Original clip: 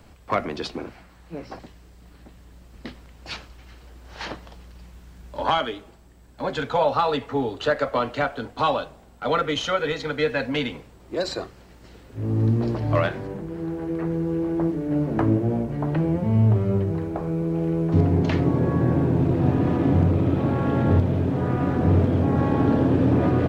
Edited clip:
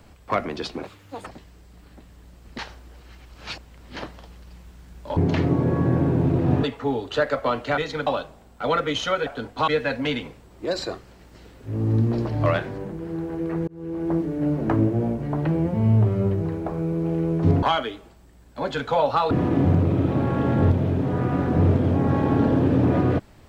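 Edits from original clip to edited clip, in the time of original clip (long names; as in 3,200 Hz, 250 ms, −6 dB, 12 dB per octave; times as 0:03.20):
0:00.83–0:01.55: play speed 165%
0:02.87–0:04.25: reverse
0:05.45–0:07.13: swap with 0:18.12–0:19.59
0:08.27–0:08.68: swap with 0:09.88–0:10.17
0:14.17–0:14.61: fade in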